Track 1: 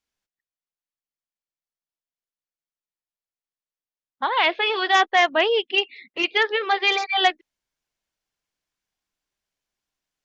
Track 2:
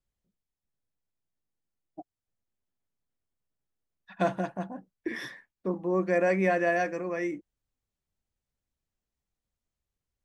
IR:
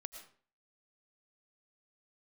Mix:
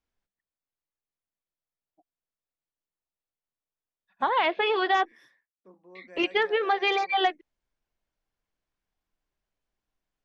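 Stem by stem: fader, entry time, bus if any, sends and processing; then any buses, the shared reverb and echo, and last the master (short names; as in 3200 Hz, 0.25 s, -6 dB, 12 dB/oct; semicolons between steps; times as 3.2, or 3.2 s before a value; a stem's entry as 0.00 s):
+1.0 dB, 0.00 s, muted 5.12–5.95, no send, tilt -4 dB/oct
-19.5 dB, 0.00 s, no send, dry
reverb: off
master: low shelf 300 Hz -11 dB; compressor, threshold -20 dBFS, peak gain reduction 7 dB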